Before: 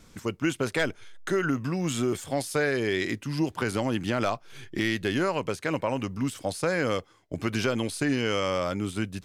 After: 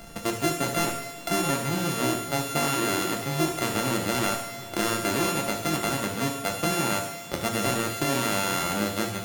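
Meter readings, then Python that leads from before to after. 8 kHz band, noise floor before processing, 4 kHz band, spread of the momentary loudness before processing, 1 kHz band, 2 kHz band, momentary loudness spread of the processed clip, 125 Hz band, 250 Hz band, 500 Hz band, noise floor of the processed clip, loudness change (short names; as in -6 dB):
+10.0 dB, -55 dBFS, +5.0 dB, 5 LU, +5.5 dB, +1.0 dB, 4 LU, +0.5 dB, -0.5 dB, -1.0 dB, -40 dBFS, +2.0 dB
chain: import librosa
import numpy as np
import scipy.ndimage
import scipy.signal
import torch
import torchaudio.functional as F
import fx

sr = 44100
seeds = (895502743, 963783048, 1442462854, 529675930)

p1 = np.r_[np.sort(x[:len(x) // 64 * 64].reshape(-1, 64), axis=1).ravel(), x[len(x) // 64 * 64:]]
p2 = p1 + fx.echo_wet_highpass(p1, sr, ms=72, feedback_pct=66, hz=2300.0, wet_db=-8.5, dry=0)
p3 = fx.rev_double_slope(p2, sr, seeds[0], early_s=0.56, late_s=3.8, knee_db=-21, drr_db=1.0)
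y = fx.band_squash(p3, sr, depth_pct=40)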